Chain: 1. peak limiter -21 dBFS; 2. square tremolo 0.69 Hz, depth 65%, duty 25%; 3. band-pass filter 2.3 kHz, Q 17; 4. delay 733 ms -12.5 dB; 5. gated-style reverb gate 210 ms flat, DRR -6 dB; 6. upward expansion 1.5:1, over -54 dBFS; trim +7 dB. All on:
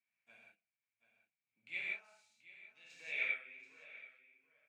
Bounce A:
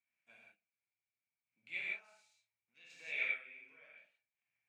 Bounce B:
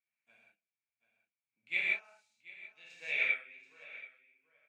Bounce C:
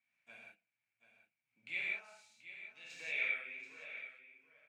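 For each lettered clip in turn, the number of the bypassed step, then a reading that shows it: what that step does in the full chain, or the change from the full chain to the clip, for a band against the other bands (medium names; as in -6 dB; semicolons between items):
4, momentary loudness spread change +1 LU; 1, mean gain reduction 2.5 dB; 6, momentary loudness spread change +2 LU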